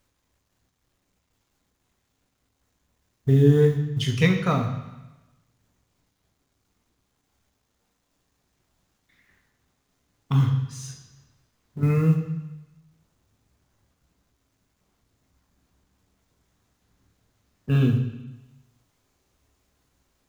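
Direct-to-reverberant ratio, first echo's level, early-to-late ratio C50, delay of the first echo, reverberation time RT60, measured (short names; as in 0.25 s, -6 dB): 3.0 dB, none, 8.0 dB, none, 1.0 s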